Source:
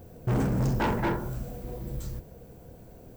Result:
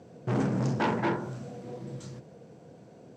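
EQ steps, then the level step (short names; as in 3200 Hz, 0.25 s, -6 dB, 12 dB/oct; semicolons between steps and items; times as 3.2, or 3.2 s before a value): HPF 130 Hz 24 dB/oct; LPF 7100 Hz 24 dB/oct; 0.0 dB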